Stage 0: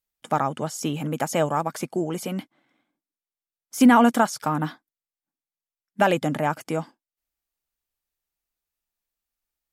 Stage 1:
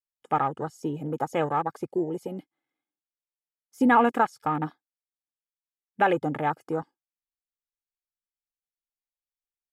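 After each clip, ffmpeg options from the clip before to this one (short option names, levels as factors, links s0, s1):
-af "aecho=1:1:2.4:0.52,afwtdn=0.0316,volume=0.708"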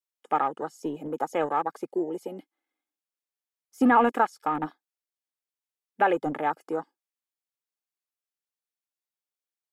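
-filter_complex "[0:a]acrossover=split=210|2100[s0][s1][s2];[s0]acrusher=bits=4:mix=0:aa=0.5[s3];[s2]alimiter=level_in=3.55:limit=0.0631:level=0:latency=1:release=14,volume=0.282[s4];[s3][s1][s4]amix=inputs=3:normalize=0"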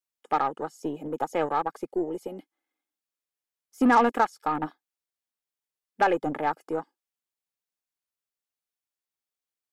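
-af "aeval=exprs='0.376*(cos(1*acos(clip(val(0)/0.376,-1,1)))-cos(1*PI/2))+0.0237*(cos(6*acos(clip(val(0)/0.376,-1,1)))-cos(6*PI/2))+0.0237*(cos(8*acos(clip(val(0)/0.376,-1,1)))-cos(8*PI/2))':c=same"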